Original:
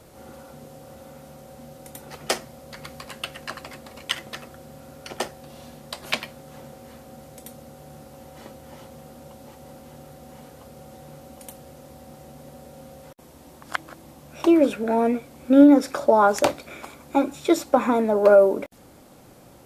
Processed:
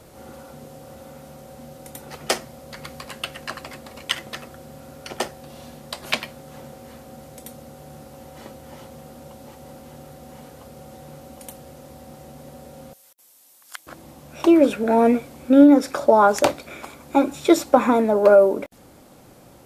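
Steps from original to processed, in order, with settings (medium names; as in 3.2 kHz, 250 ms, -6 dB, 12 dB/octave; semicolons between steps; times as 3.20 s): 12.93–13.87 s: differentiator; in parallel at +0.5 dB: gain riding 0.5 s; on the sum: trim -3 dB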